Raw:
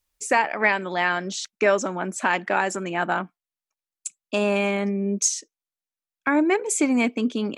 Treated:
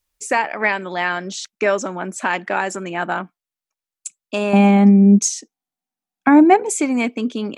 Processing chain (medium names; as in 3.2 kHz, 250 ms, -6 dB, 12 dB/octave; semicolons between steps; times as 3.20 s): 4.53–6.71 s: small resonant body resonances 220/750 Hz, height 16 dB, ringing for 30 ms; trim +1.5 dB